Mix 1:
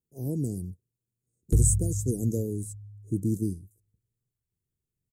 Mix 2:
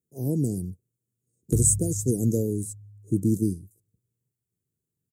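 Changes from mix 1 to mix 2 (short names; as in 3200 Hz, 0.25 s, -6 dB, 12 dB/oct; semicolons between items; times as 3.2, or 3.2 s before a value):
speech +5.0 dB; master: add HPF 96 Hz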